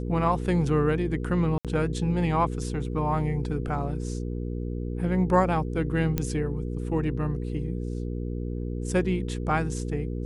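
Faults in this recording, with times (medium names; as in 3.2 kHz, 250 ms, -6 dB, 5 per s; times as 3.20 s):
hum 60 Hz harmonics 8 -31 dBFS
1.58–1.65 s: dropout 67 ms
6.18 s: pop -12 dBFS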